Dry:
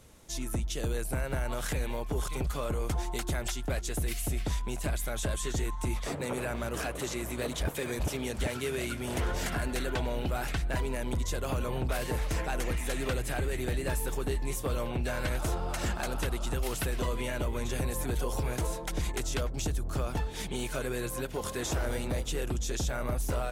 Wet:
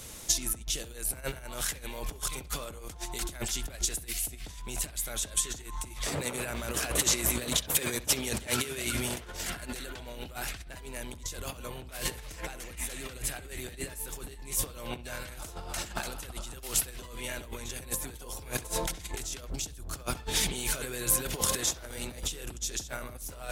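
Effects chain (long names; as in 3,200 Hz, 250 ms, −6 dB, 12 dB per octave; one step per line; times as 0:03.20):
compressor whose output falls as the input rises −37 dBFS, ratio −0.5
high-shelf EQ 2,200 Hz +11.5 dB
on a send: bucket-brigade delay 66 ms, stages 2,048, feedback 37%, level −18 dB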